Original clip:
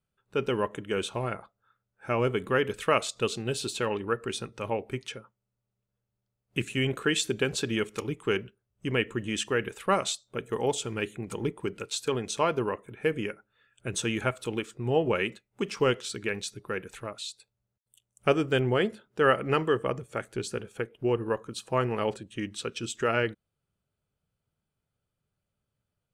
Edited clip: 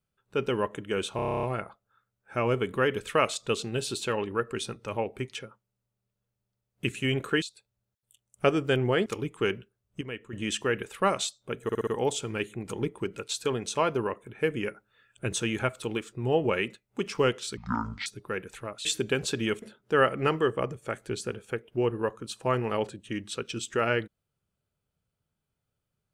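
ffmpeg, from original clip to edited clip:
-filter_complex "[0:a]asplit=24[s0][s1][s2][s3][s4][s5][s6][s7][s8][s9][s10][s11][s12][s13][s14][s15][s16][s17][s18][s19][s20][s21][s22][s23];[s0]atrim=end=1.192[s24];[s1]atrim=start=1.158:end=1.192[s25];[s2]atrim=start=1.158:end=1.192[s26];[s3]atrim=start=1.158:end=1.192[s27];[s4]atrim=start=1.158:end=1.192[s28];[s5]atrim=start=1.158:end=1.192[s29];[s6]atrim=start=1.158:end=1.192[s30];[s7]atrim=start=1.158:end=1.192[s31];[s8]atrim=start=1.158:end=1.192[s32];[s9]atrim=start=1.158:end=7.152[s33];[s10]atrim=start=17.248:end=18.892[s34];[s11]atrim=start=7.918:end=8.872[s35];[s12]atrim=start=8.868:end=9.192,asetpts=PTS-STARTPTS,volume=0.282[s36];[s13]atrim=start=9.188:end=10.552[s37];[s14]atrim=start=10.488:end=10.552[s38];[s15]atrim=start=10.488:end=10.552[s39];[s16]atrim=start=10.488:end=10.552[s40];[s17]atrim=start=10.488:end=13.262[s41];[s18]atrim=start=13.258:end=13.952,asetpts=PTS-STARTPTS,volume=1.41[s42];[s19]atrim=start=13.948:end=16.194[s43];[s20]atrim=start=16.19:end=16.46,asetpts=PTS-STARTPTS,asetrate=24255,aresample=44100,atrim=end_sample=21649,asetpts=PTS-STARTPTS[s44];[s21]atrim=start=16.456:end=17.252[s45];[s22]atrim=start=7.148:end=7.922[s46];[s23]atrim=start=18.888[s47];[s24][s25]acrossfade=d=0.004:c1=hsin:c2=hsin[s48];[s48][s26]acrossfade=d=0.004:c1=hsin:c2=hsin[s49];[s49][s27]acrossfade=d=0.004:c1=hsin:c2=hsin[s50];[s50][s28]acrossfade=d=0.004:c1=hsin:c2=hsin[s51];[s51][s29]acrossfade=d=0.004:c1=hsin:c2=hsin[s52];[s52][s30]acrossfade=d=0.004:c1=hsin:c2=hsin[s53];[s53][s31]acrossfade=d=0.004:c1=hsin:c2=hsin[s54];[s54][s32]acrossfade=d=0.004:c1=hsin:c2=hsin[s55];[s55][s33]acrossfade=d=0.004:c1=hsin:c2=hsin[s56];[s56][s34]acrossfade=d=0.004:c1=hsin:c2=hsin[s57];[s57][s35]acrossfade=d=0.004:c1=hsin:c2=hsin[s58];[s58][s36]acrossfade=d=0.004:c1=hsin:c2=hsin[s59];[s59][s37]acrossfade=d=0.004:c1=hsin:c2=hsin[s60];[s60][s38]acrossfade=d=0.004:c1=hsin:c2=hsin[s61];[s61][s39]acrossfade=d=0.004:c1=hsin:c2=hsin[s62];[s62][s40]acrossfade=d=0.004:c1=hsin:c2=hsin[s63];[s63][s41]acrossfade=d=0.004:c1=hsin:c2=hsin[s64];[s64][s42]acrossfade=d=0.004:c1=hsin:c2=hsin[s65];[s65][s43]acrossfade=d=0.004:c1=hsin:c2=hsin[s66];[s66][s44]acrossfade=d=0.004:c1=hsin:c2=hsin[s67];[s67][s45]acrossfade=d=0.004:c1=hsin:c2=hsin[s68];[s68][s46]acrossfade=d=0.004:c1=hsin:c2=hsin[s69];[s69][s47]acrossfade=d=0.004:c1=hsin:c2=hsin"

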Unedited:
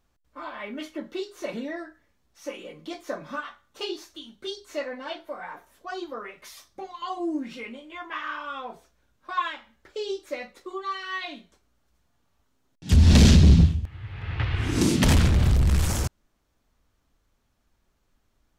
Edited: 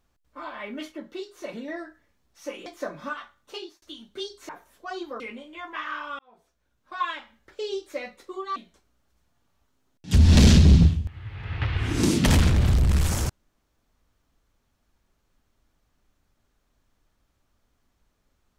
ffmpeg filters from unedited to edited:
-filter_complex "[0:a]asplit=9[s0][s1][s2][s3][s4][s5][s6][s7][s8];[s0]atrim=end=0.922[s9];[s1]atrim=start=0.918:end=1.682,asetpts=PTS-STARTPTS,volume=0.668[s10];[s2]atrim=start=1.678:end=2.662[s11];[s3]atrim=start=2.928:end=4.09,asetpts=PTS-STARTPTS,afade=t=out:st=0.542:d=0.62:c=qsin[s12];[s4]atrim=start=4.09:end=4.762,asetpts=PTS-STARTPTS,afade=t=in:d=0.004:c=hsin[s13];[s5]atrim=start=5.498:end=6.212[s14];[s6]atrim=start=7.568:end=8.56,asetpts=PTS-STARTPTS,afade=t=out:st=0.988:d=0.004:c=hsin[s15];[s7]atrim=start=8.56:end=10.932,asetpts=PTS-STARTPTS,afade=t=in:d=0.97[s16];[s8]atrim=start=11.338[s17];[s9][s10]acrossfade=d=0.004:c1=hsin:c2=hsin[s18];[s18][s11]acrossfade=d=0.004:c1=hsin:c2=hsin[s19];[s12][s13]concat=n=2:v=0:a=1[s20];[s19][s20]acrossfade=d=0.004:c1=hsin:c2=hsin[s21];[s21][s14]acrossfade=d=0.004:c1=hsin:c2=hsin[s22];[s15][s16]concat=n=2:v=0:a=1[s23];[s22][s23]acrossfade=d=0.004:c1=hsin:c2=hsin[s24];[s24][s17]acrossfade=d=0.004:c1=hsin:c2=hsin"

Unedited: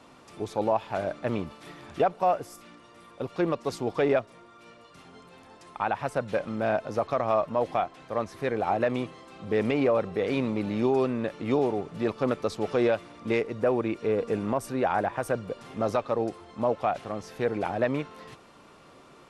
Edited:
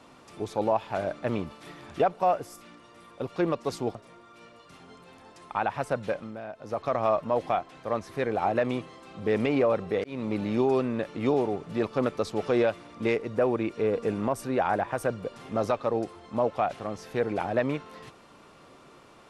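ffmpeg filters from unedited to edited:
-filter_complex "[0:a]asplit=5[s0][s1][s2][s3][s4];[s0]atrim=end=3.952[s5];[s1]atrim=start=4.198:end=6.66,asetpts=PTS-STARTPTS,afade=t=out:st=2.062:d=0.4:silence=0.211349[s6];[s2]atrim=start=6.66:end=6.79,asetpts=PTS-STARTPTS,volume=0.211[s7];[s3]atrim=start=6.79:end=10.29,asetpts=PTS-STARTPTS,afade=t=in:d=0.4:silence=0.211349,afade=t=out:st=3.496:d=0.004:c=hsin[s8];[s4]atrim=start=10.29,asetpts=PTS-STARTPTS,afade=t=in:d=0.28[s9];[s6][s7][s8][s9]concat=n=4:v=0:a=1[s10];[s5][s10]acrossfade=d=0.004:c1=hsin:c2=hsin"

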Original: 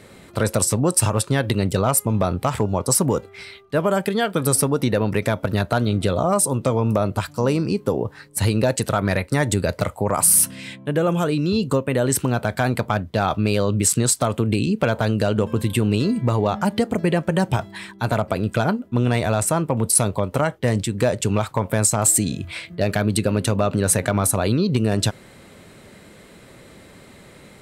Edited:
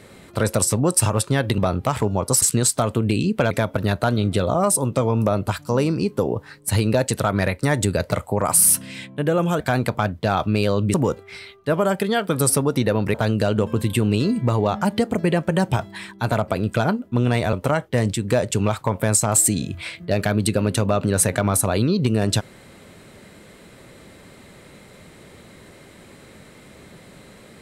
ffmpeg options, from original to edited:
-filter_complex "[0:a]asplit=8[s0][s1][s2][s3][s4][s5][s6][s7];[s0]atrim=end=1.582[s8];[s1]atrim=start=2.158:end=3.002[s9];[s2]atrim=start=13.848:end=14.942[s10];[s3]atrim=start=5.198:end=11.292[s11];[s4]atrim=start=12.508:end=13.852[s12];[s5]atrim=start=2.998:end=5.202[s13];[s6]atrim=start=14.938:end=19.332[s14];[s7]atrim=start=20.228[s15];[s8][s9]acrossfade=d=0.004:c1=hsin:c2=hsin[s16];[s16][s10]acrossfade=d=0.004:c1=hsin:c2=hsin[s17];[s17][s11]acrossfade=d=0.004:c1=hsin:c2=hsin[s18];[s18][s12]acrossfade=d=0.004:c1=hsin:c2=hsin[s19];[s19][s13]acrossfade=d=0.004:c1=hsin:c2=hsin[s20];[s20][s14]acrossfade=d=0.004:c1=hsin:c2=hsin[s21];[s21][s15]acrossfade=d=0.004:c1=hsin:c2=hsin"

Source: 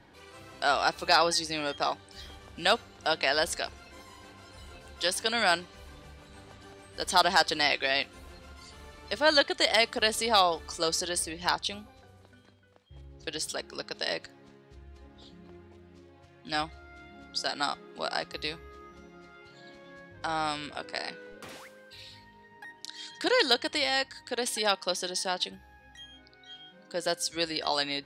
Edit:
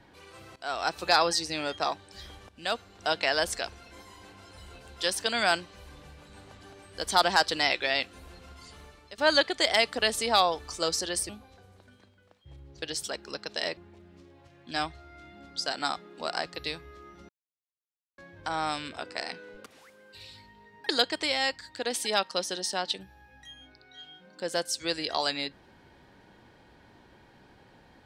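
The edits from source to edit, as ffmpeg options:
-filter_complex "[0:a]asplit=10[s0][s1][s2][s3][s4][s5][s6][s7][s8][s9];[s0]atrim=end=0.56,asetpts=PTS-STARTPTS,afade=t=out:st=0.556:d=0.004:c=hsin:silence=0.133352[s10];[s1]atrim=start=0.56:end=2.49,asetpts=PTS-STARTPTS,afade=t=in:d=0.44:silence=0.133352,afade=t=out:st=1.926:d=0.004:c=hsin:silence=0.223872[s11];[s2]atrim=start=2.49:end=9.18,asetpts=PTS-STARTPTS,afade=t=in:d=0.58:silence=0.223872,afade=t=out:st=6.28:d=0.41:silence=0.11885[s12];[s3]atrim=start=9.18:end=11.292,asetpts=PTS-STARTPTS,afade=t=in:d=0.004:c=hsin:silence=0.11885[s13];[s4]atrim=start=11.738:end=14.222[s14];[s5]atrim=start=15.548:end=19.07,asetpts=PTS-STARTPTS,afade=t=out:st=3.518:d=0.004:c=hsin[s15];[s6]atrim=start=19.07:end=19.96,asetpts=PTS-STARTPTS,volume=0[s16];[s7]atrim=start=19.96:end=21.44,asetpts=PTS-STARTPTS,afade=t=in:d=0.004:c=hsin,afade=t=out:st=1.476:d=0.004:c=hsin:silence=0.133352[s17];[s8]atrim=start=21.44:end=22.672,asetpts=PTS-STARTPTS,afade=t=in:d=0.52:silence=0.133352[s18];[s9]atrim=start=23.408[s19];[s10][s11][s12][s13]concat=n=4:v=0:a=1[s20];[s20][s14]acrossfade=d=0.004:c1=hsin:c2=hsin[s21];[s15][s16][s17][s18]concat=n=4:v=0:a=1[s22];[s21][s22]acrossfade=d=0.004:c1=hsin:c2=hsin[s23];[s23][s19]acrossfade=d=0.004:c1=hsin:c2=hsin"

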